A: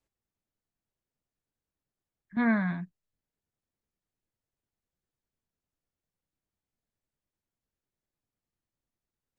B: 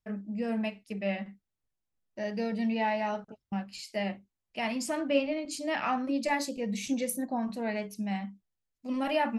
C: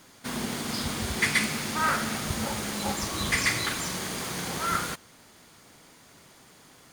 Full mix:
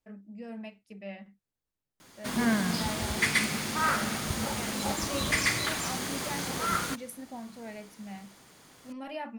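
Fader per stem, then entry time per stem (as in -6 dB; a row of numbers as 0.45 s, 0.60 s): -1.5 dB, -10.0 dB, -1.5 dB; 0.00 s, 0.00 s, 2.00 s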